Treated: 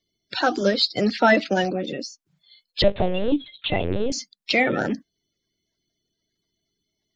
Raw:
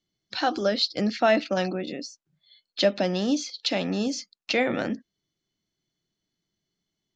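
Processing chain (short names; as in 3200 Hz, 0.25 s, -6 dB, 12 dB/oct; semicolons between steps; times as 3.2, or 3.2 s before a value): bin magnitudes rounded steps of 30 dB; 2.82–4.12 LPC vocoder at 8 kHz pitch kept; gain +4.5 dB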